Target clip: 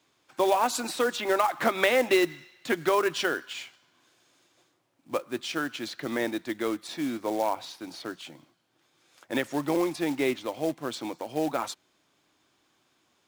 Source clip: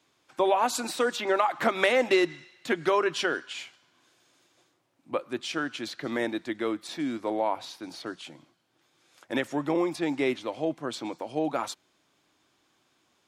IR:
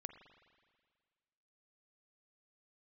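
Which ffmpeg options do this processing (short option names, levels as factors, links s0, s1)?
-af "acrusher=bits=4:mode=log:mix=0:aa=0.000001"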